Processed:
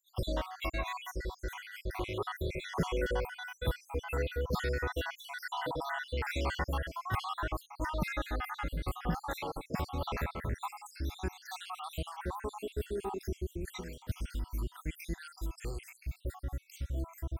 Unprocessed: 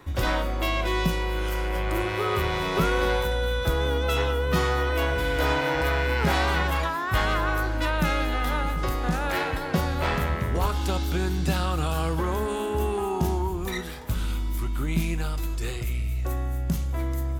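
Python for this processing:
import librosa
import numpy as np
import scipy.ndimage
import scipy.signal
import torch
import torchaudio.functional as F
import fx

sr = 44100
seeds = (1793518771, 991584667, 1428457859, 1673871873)

y = fx.spec_dropout(x, sr, seeds[0], share_pct=66)
y = y * librosa.db_to_amplitude(-6.5)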